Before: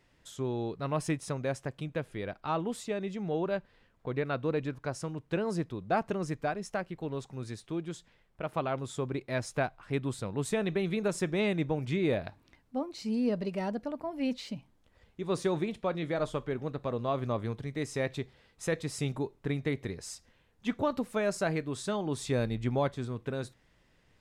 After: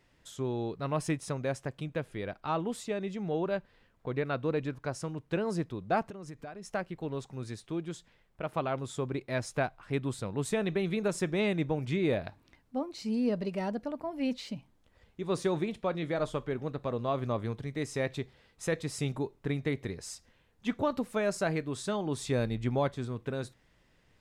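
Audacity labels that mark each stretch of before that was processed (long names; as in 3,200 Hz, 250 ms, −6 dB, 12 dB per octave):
6.040000	6.710000	downward compressor, threshold −40 dBFS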